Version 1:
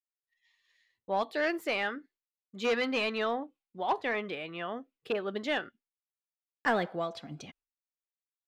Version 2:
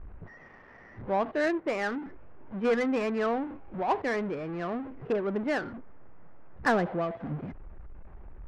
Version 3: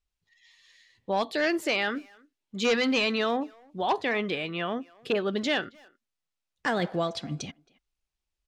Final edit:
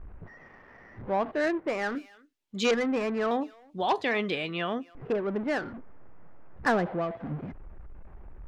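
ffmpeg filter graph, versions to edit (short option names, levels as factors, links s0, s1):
-filter_complex "[2:a]asplit=2[s0][s1];[1:a]asplit=3[s2][s3][s4];[s2]atrim=end=1.952[s5];[s0]atrim=start=1.948:end=2.712[s6];[s3]atrim=start=2.708:end=3.312[s7];[s1]atrim=start=3.308:end=4.952[s8];[s4]atrim=start=4.948[s9];[s5][s6]acrossfade=d=0.004:c1=hsin:c2=hsin[s10];[s10][s7]acrossfade=d=0.004:c1=hsin:c2=hsin[s11];[s11][s8]acrossfade=d=0.004:c1=hsin:c2=hsin[s12];[s12][s9]acrossfade=d=0.004:c1=hsin:c2=hsin"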